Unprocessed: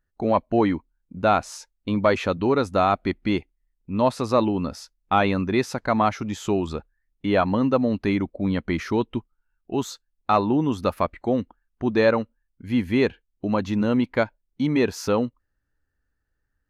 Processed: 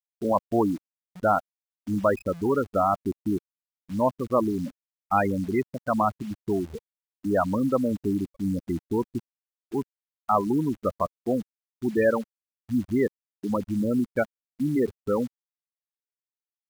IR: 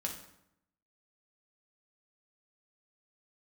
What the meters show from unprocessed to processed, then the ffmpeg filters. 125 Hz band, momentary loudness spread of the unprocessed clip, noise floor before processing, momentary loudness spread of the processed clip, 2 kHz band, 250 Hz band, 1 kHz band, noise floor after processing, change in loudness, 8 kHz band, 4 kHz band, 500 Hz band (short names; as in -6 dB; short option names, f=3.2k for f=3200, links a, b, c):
-4.5 dB, 11 LU, -76 dBFS, 11 LU, -6.0 dB, -3.0 dB, -3.0 dB, under -85 dBFS, -3.5 dB, n/a, under -15 dB, -3.0 dB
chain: -af "afftfilt=real='re*gte(hypot(re,im),0.2)':imag='im*gte(hypot(re,im),0.2)':win_size=1024:overlap=0.75,aemphasis=mode=production:type=75kf,acrusher=bits=8:dc=4:mix=0:aa=0.000001,volume=-3dB"